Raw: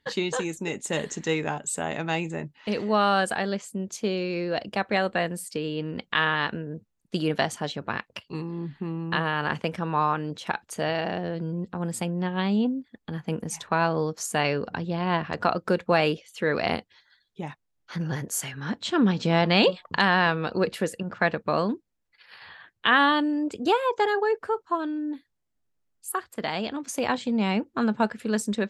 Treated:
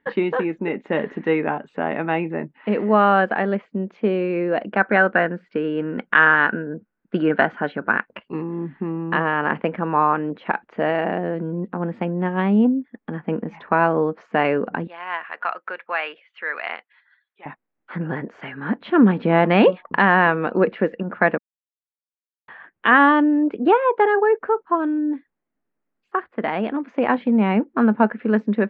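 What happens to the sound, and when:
0:04.70–0:08.12: parametric band 1,500 Hz +13.5 dB 0.22 octaves
0:14.87–0:17.46: high-pass filter 1,400 Hz
0:21.38–0:22.48: silence
whole clip: inverse Chebyshev low-pass filter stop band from 8,800 Hz, stop band 70 dB; low shelf with overshoot 160 Hz −10 dB, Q 1.5; level +6 dB

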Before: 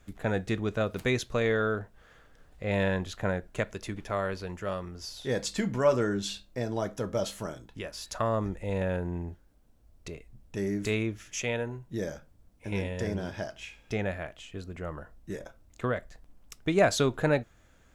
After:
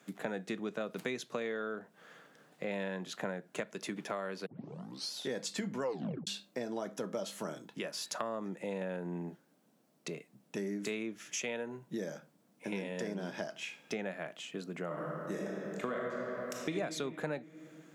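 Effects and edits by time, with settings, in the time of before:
0:04.46: tape start 0.66 s
0:05.82: tape stop 0.45 s
0:14.85–0:16.70: thrown reverb, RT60 2.2 s, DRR −3 dB
whole clip: Butterworth high-pass 150 Hz 48 dB per octave; downward compressor 5 to 1, threshold −37 dBFS; level +2 dB

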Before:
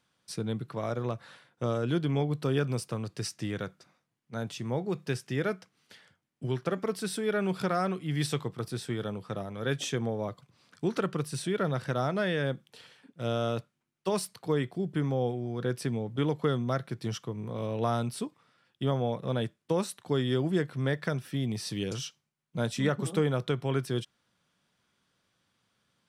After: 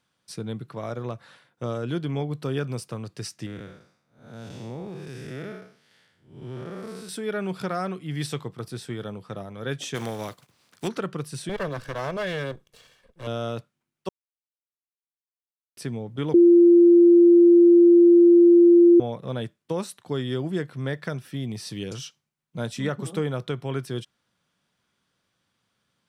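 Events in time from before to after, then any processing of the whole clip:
0:03.46–0:07.09: spectrum smeared in time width 247 ms
0:09.94–0:10.87: compressing power law on the bin magnitudes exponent 0.58
0:11.49–0:13.27: lower of the sound and its delayed copy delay 1.8 ms
0:14.09–0:15.77: silence
0:16.34–0:19.00: beep over 345 Hz −10 dBFS

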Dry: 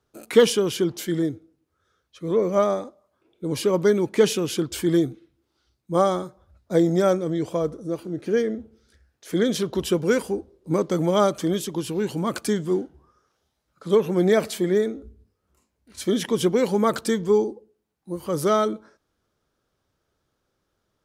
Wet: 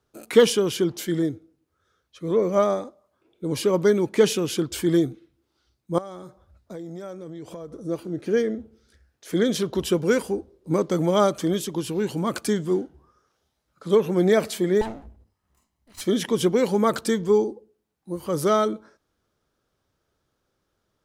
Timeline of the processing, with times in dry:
0:05.98–0:07.74: downward compressor 5 to 1, threshold −35 dBFS
0:14.81–0:16.01: lower of the sound and its delayed copy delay 1 ms

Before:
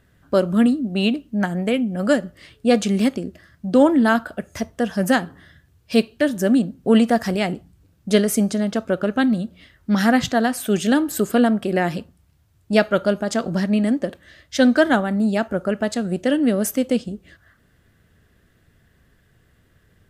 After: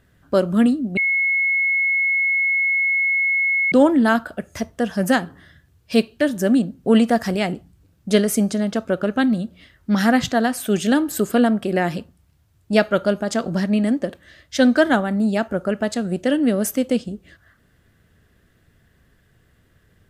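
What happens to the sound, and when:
0:00.97–0:03.72: beep over 2,180 Hz −16 dBFS

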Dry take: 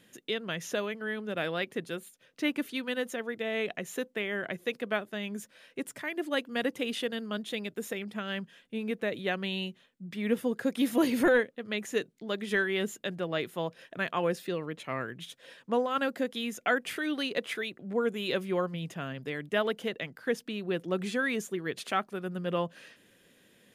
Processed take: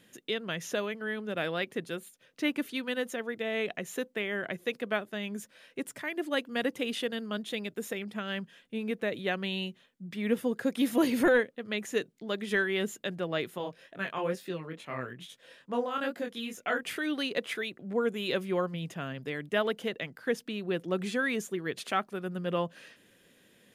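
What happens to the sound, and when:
0:13.58–0:16.83: chorus effect 2.3 Hz, delay 20 ms, depth 5.3 ms

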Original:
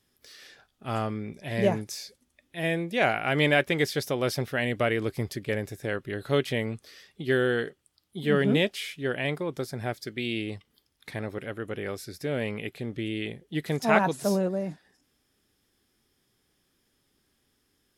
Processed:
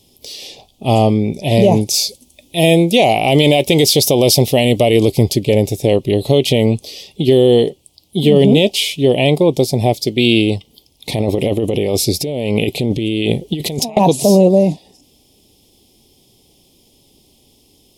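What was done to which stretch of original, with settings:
0:01.94–0:05.12: high-shelf EQ 4,300 Hz +7 dB
0:11.09–0:13.97: compressor whose output falls as the input rises −37 dBFS
whole clip: Chebyshev band-stop filter 780–2,900 Hz, order 2; boost into a limiter +21 dB; level −1 dB

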